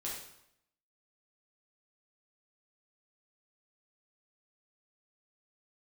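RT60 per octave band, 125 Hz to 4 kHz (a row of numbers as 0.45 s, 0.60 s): 0.85 s, 0.80 s, 0.75 s, 0.75 s, 0.70 s, 0.70 s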